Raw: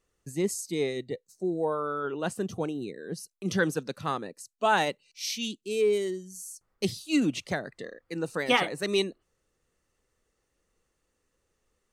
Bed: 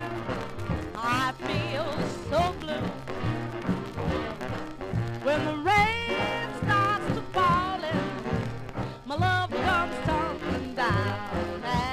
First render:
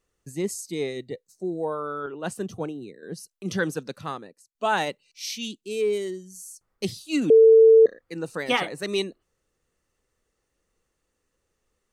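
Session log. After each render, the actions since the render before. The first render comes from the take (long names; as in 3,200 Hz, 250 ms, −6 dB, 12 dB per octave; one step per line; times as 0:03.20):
0:02.06–0:03.03: multiband upward and downward expander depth 70%
0:03.95–0:04.55: fade out, to −23 dB
0:07.30–0:07.86: beep over 447 Hz −9.5 dBFS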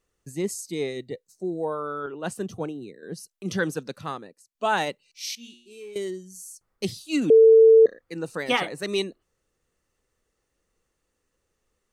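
0:05.35–0:05.96: tuned comb filter 120 Hz, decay 0.66 s, mix 90%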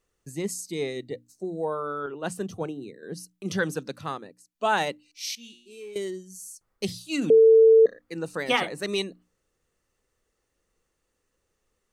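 mains-hum notches 60/120/180/240/300 Hz
dynamic equaliser 340 Hz, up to −6 dB, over −32 dBFS, Q 2.9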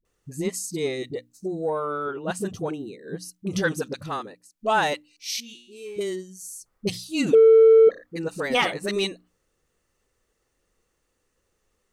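in parallel at −7 dB: soft clipping −19.5 dBFS, distortion −9 dB
on the sum: all-pass dispersion highs, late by 51 ms, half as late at 380 Hz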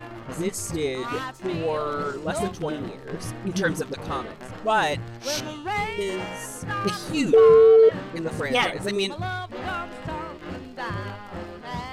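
mix in bed −5.5 dB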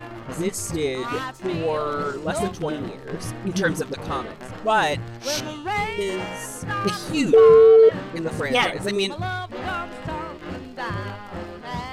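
level +2 dB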